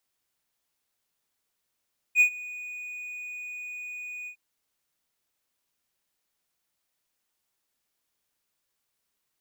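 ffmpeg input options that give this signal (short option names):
-f lavfi -i "aevalsrc='0.251*(1-4*abs(mod(2470*t+0.25,1)-0.5))':d=2.207:s=44100,afade=t=in:d=0.055,afade=t=out:st=0.055:d=0.089:silence=0.0841,afade=t=out:st=2.12:d=0.087"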